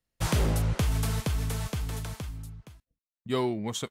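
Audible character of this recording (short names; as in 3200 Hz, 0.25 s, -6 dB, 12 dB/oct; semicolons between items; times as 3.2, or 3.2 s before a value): noise floor -96 dBFS; spectral tilt -5.5 dB/oct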